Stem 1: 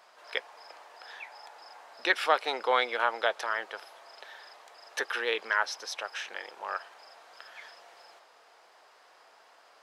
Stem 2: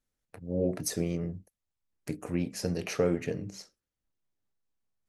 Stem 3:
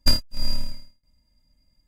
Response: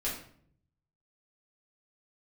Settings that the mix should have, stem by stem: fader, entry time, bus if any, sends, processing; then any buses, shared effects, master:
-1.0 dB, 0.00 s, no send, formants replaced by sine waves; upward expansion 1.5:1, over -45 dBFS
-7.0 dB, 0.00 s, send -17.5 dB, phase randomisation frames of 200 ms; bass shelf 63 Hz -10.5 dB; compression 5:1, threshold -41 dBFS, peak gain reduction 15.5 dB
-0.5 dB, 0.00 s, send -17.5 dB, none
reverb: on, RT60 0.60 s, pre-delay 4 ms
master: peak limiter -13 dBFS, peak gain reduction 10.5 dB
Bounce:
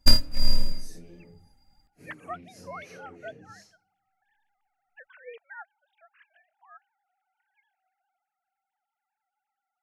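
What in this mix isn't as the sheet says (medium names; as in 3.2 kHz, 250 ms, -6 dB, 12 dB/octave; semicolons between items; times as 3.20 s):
stem 1 -1.0 dB -> -12.5 dB; stem 2: missing bass shelf 63 Hz -10.5 dB; master: missing peak limiter -13 dBFS, peak gain reduction 10.5 dB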